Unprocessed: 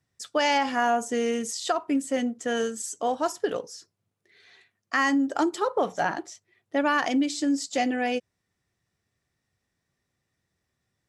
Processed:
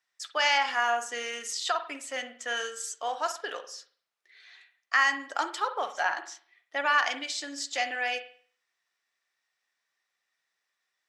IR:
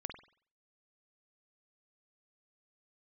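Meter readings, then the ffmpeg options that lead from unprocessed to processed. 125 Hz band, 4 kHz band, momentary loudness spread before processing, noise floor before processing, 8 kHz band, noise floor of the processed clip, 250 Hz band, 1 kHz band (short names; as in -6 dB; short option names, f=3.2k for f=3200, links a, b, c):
under -25 dB, +2.5 dB, 7 LU, -81 dBFS, -1.5 dB, -82 dBFS, -20.5 dB, -2.0 dB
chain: -filter_complex "[0:a]highpass=1.1k,asplit=2[a][b];[1:a]atrim=start_sample=2205,lowpass=6.7k[c];[b][c]afir=irnorm=-1:irlink=0,volume=3dB[d];[a][d]amix=inputs=2:normalize=0,volume=-3dB"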